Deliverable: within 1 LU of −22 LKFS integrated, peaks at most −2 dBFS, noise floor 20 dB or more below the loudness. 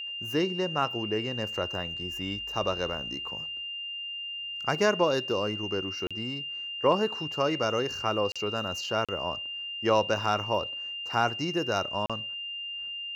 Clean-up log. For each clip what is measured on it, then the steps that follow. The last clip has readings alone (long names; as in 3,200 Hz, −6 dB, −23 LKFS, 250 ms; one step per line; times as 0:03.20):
number of dropouts 4; longest dropout 36 ms; interfering tone 2,800 Hz; level of the tone −34 dBFS; integrated loudness −29.5 LKFS; sample peak −10.5 dBFS; target loudness −22.0 LKFS
→ repair the gap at 0:06.07/0:08.32/0:09.05/0:12.06, 36 ms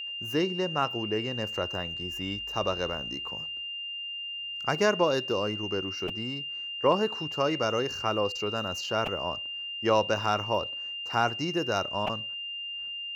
number of dropouts 0; interfering tone 2,800 Hz; level of the tone −34 dBFS
→ notch filter 2,800 Hz, Q 30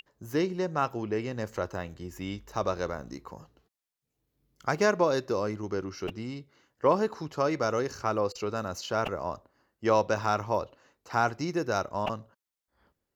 interfering tone none found; integrated loudness −30.5 LKFS; sample peak −11.0 dBFS; target loudness −22.0 LKFS
→ level +8.5 dB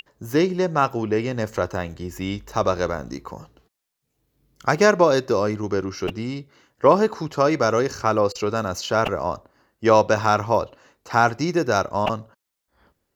integrated loudness −22.0 LKFS; sample peak −2.5 dBFS; background noise floor −78 dBFS